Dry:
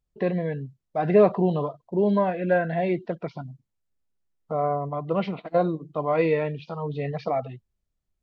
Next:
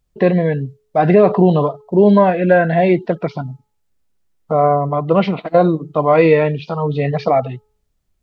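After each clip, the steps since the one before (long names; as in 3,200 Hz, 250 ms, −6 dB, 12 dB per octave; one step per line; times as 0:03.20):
hum removal 426.5 Hz, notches 3
boost into a limiter +12.5 dB
level −1 dB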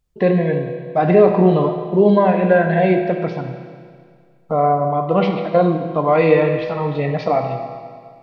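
convolution reverb RT60 2.0 s, pre-delay 6 ms, DRR 4 dB
level −3 dB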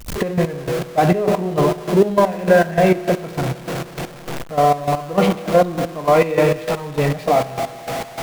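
converter with a step at zero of −19.5 dBFS
gate pattern ".xx..x...xx." 200 BPM −12 dB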